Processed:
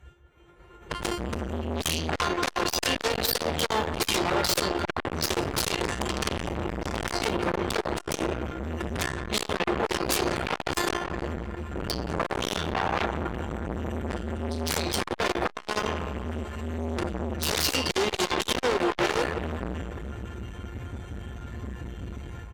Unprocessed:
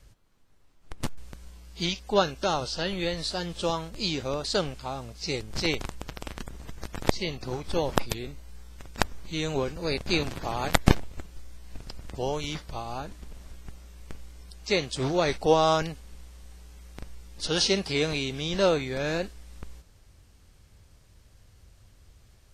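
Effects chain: local Wiener filter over 9 samples; formant-preserving pitch shift +5 st; high-pass 51 Hz 24 dB/octave; comb 2.2 ms, depth 50%; compression 8:1, threshold -33 dBFS, peak gain reduction 19 dB; feedback comb 350 Hz, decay 0.38 s, harmonics all, mix 90%; dynamic bell 310 Hz, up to -4 dB, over -55 dBFS, Q 2.3; level rider gain up to 16 dB; sine folder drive 18 dB, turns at -18 dBFS; on a send: feedback echo behind a low-pass 175 ms, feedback 62%, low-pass 2.1 kHz, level -7.5 dB; on the sum: transformer saturation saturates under 850 Hz

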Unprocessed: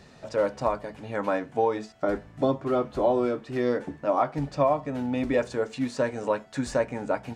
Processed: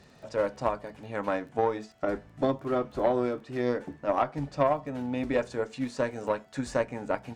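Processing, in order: Chebyshev shaper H 3 -18 dB, 4 -30 dB, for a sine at -10.5 dBFS; crackle 12 per s -47 dBFS

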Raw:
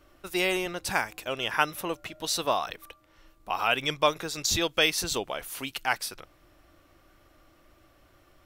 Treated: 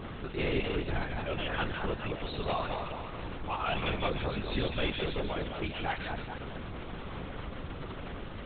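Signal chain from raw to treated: jump at every zero crossing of -34 dBFS; bass shelf 400 Hz +8.5 dB; hard clipper -20.5 dBFS, distortion -11 dB; on a send: two-band feedback delay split 1.6 kHz, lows 215 ms, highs 149 ms, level -4.5 dB; on the sum: LPC vocoder at 8 kHz whisper; attacks held to a fixed rise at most 180 dB/s; trim -7 dB

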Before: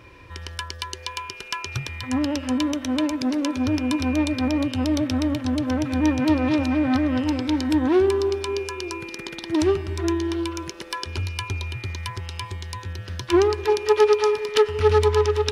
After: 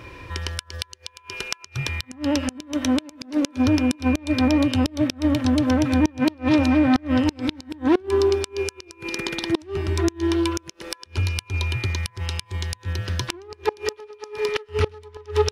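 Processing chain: in parallel at -1.5 dB: compression 6:1, threshold -28 dBFS, peak gain reduction 15.5 dB; on the sum: inverted gate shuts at -9 dBFS, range -28 dB; trim +1.5 dB

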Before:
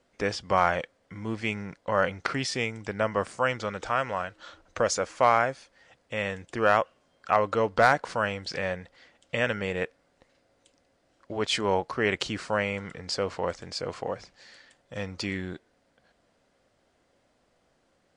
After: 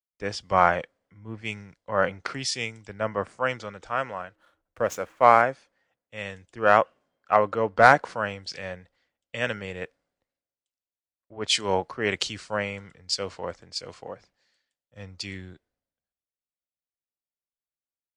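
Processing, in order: 4.35–5.42 s: median filter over 9 samples; three bands expanded up and down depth 100%; trim -2 dB

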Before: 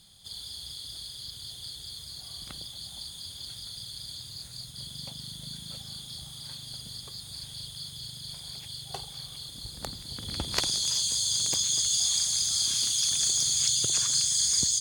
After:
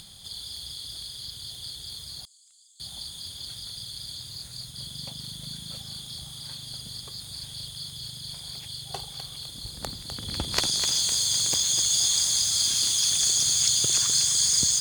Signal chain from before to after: upward compressor, threshold -42 dBFS; 2.25–2.80 s: band-pass filter 7.5 kHz, Q 10; bit-crushed delay 253 ms, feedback 55%, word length 6-bit, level -7 dB; trim +2.5 dB

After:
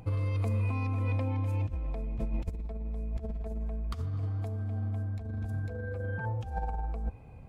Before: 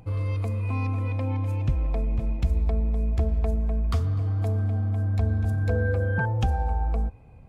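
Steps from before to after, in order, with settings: bass shelf 64 Hz -2.5 dB; compressor with a negative ratio -28 dBFS, ratio -0.5; trim -3 dB

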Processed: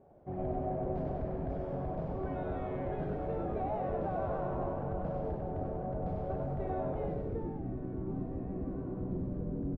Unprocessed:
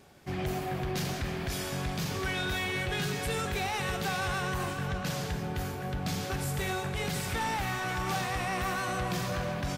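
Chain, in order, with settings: frequency-shifting echo 97 ms, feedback 59%, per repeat -110 Hz, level -3.5 dB; low-pass sweep 640 Hz -> 310 Hz, 7.03–7.61 s; trim -6 dB

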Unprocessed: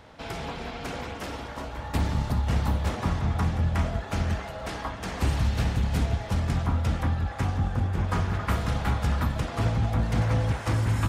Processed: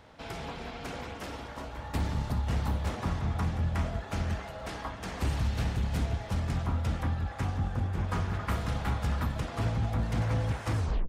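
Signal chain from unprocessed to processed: tape stop on the ending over 0.32 s; hard clipper -18 dBFS, distortion -25 dB; trim -4.5 dB

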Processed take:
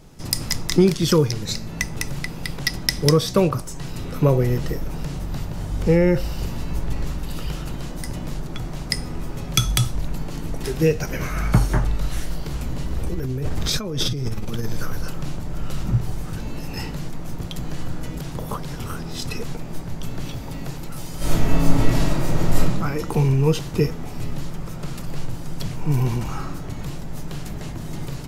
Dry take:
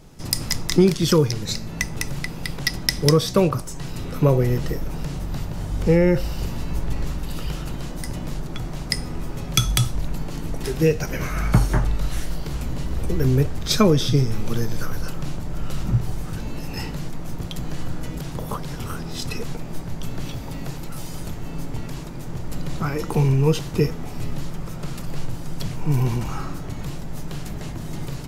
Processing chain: 13.04–14.67 s: compressor with a negative ratio -23 dBFS, ratio -1; 21.17–22.60 s: reverb throw, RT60 0.95 s, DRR -12 dB

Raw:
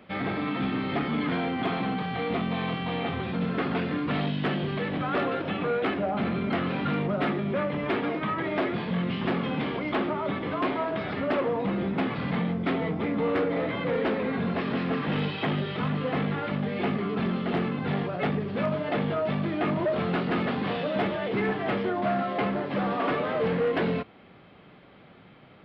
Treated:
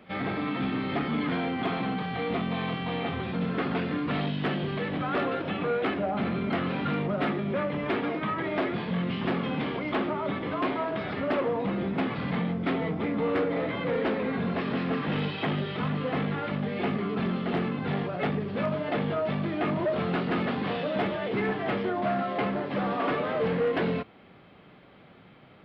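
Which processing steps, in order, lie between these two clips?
reverse echo 38 ms -21 dB; trim -1 dB

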